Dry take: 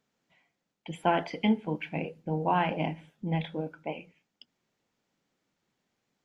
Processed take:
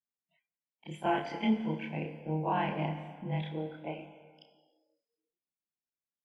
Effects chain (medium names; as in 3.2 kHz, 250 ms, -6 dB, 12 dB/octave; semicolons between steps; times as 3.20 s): short-time spectra conjugated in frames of 64 ms; plate-style reverb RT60 1.9 s, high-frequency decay 0.95×, DRR 7.5 dB; spectral noise reduction 24 dB; trim -2 dB